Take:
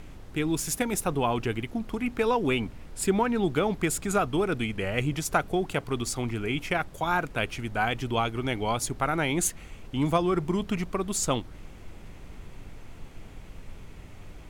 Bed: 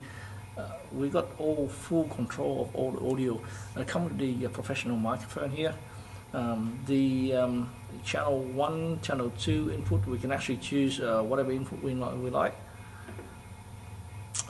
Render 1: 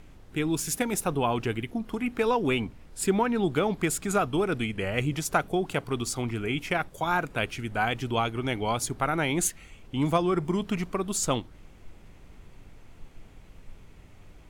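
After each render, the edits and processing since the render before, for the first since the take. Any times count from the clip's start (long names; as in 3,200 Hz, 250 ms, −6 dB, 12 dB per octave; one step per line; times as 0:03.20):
noise reduction from a noise print 6 dB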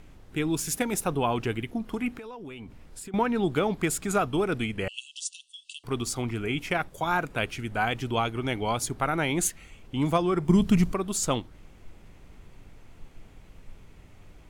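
0:02.12–0:03.14: downward compressor 16 to 1, threshold −37 dBFS
0:04.88–0:05.84: linear-phase brick-wall band-pass 2,600–9,800 Hz
0:10.49–0:10.94: bass and treble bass +13 dB, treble +7 dB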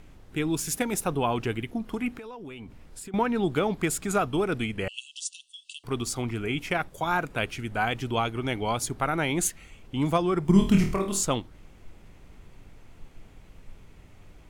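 0:10.52–0:11.23: flutter between parallel walls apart 4.4 metres, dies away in 0.37 s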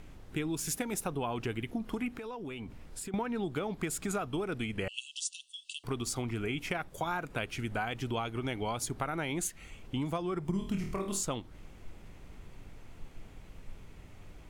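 downward compressor 6 to 1, threshold −31 dBFS, peak gain reduction 16.5 dB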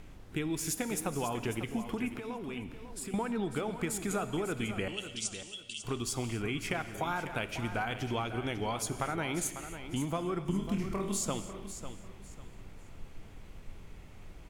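repeating echo 547 ms, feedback 26%, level −11 dB
reverb whose tail is shaped and stops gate 300 ms flat, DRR 11 dB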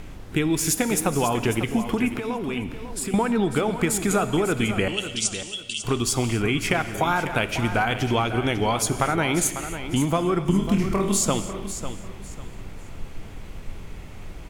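level +11.5 dB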